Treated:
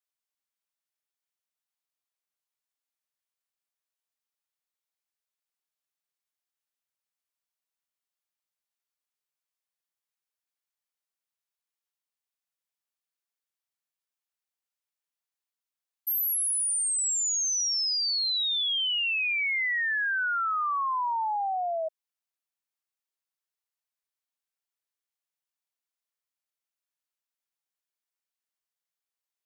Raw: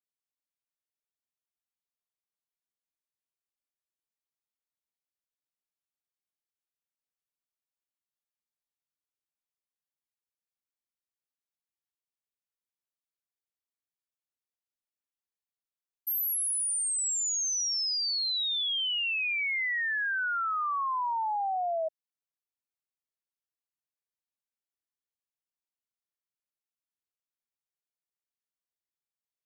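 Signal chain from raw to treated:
high-pass filter 600 Hz
level +2.5 dB

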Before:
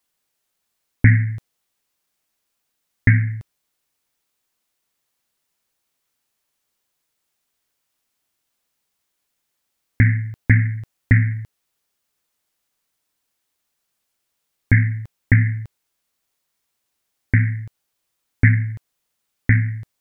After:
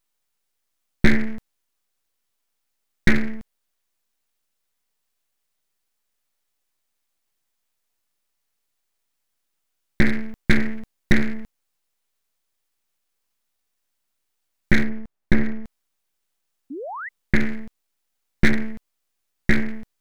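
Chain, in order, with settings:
full-wave rectification
0:14.83–0:15.63: high-shelf EQ 2,200 Hz → 2,100 Hz −11 dB
0:16.70–0:17.09: sound drawn into the spectrogram rise 250–2,100 Hz −32 dBFS

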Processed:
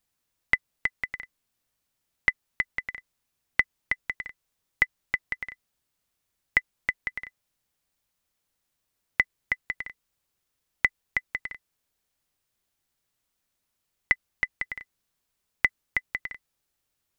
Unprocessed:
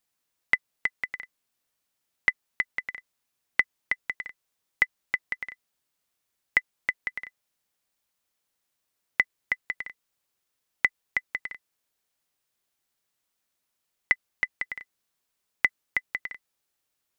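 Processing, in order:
low-shelf EQ 150 Hz +11 dB

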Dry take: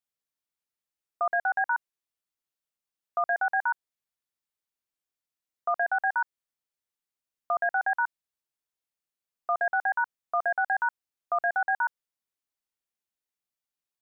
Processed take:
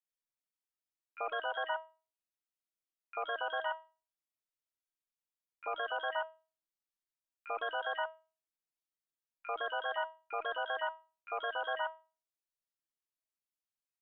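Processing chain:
pitch-shifted copies added −7 semitones −4 dB, −3 semitones −9 dB, +12 semitones −8 dB
tuned comb filter 320 Hz, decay 0.33 s, harmonics all, mix 80%

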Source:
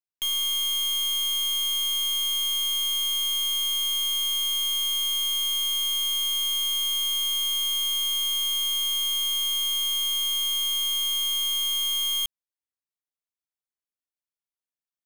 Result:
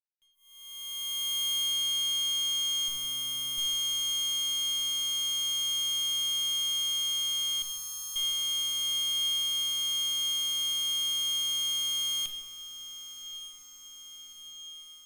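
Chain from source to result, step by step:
fade in at the beginning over 2.99 s
0:02.88–0:03.58: low-shelf EQ 330 Hz +8.5 dB
brickwall limiter −30.5 dBFS, peak gain reduction 8 dB
0:07.62–0:08.16: phaser with its sweep stopped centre 460 Hz, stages 8
harmonic generator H 5 −7 dB, 7 −6 dB, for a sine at −25.5 dBFS
on a send: feedback delay with all-pass diffusion 1,189 ms, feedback 65%, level −13 dB
on the sum: rectangular room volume 1,000 cubic metres, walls mixed, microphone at 1.1 metres
level −4.5 dB

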